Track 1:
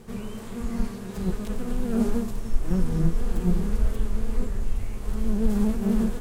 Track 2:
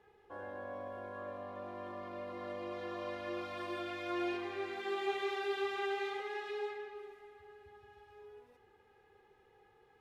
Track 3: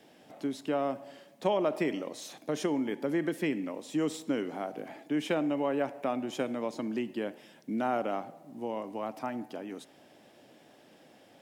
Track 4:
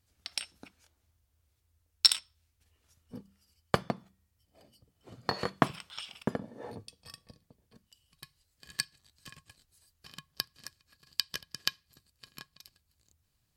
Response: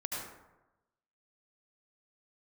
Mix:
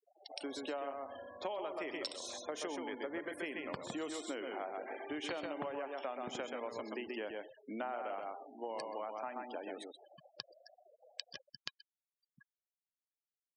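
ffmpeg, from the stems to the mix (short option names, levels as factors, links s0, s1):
-filter_complex "[1:a]adelay=150,volume=0.398,asplit=2[s0][s1];[s1]volume=0.0891[s2];[2:a]highpass=510,volume=1.26,asplit=2[s3][s4];[s4]volume=0.596[s5];[3:a]lowpass=7600,volume=0.335,asplit=2[s6][s7];[s7]volume=0.15[s8];[s0]lowshelf=f=210:g=3,alimiter=level_in=8.91:limit=0.0631:level=0:latency=1:release=12,volume=0.112,volume=1[s9];[s2][s5][s8]amix=inputs=3:normalize=0,aecho=0:1:129|258|387:1|0.16|0.0256[s10];[s3][s6][s9][s10]amix=inputs=4:normalize=0,afftfilt=real='re*gte(hypot(re,im),0.00631)':imag='im*gte(hypot(re,im),0.00631)':win_size=1024:overlap=0.75,acompressor=threshold=0.0126:ratio=6"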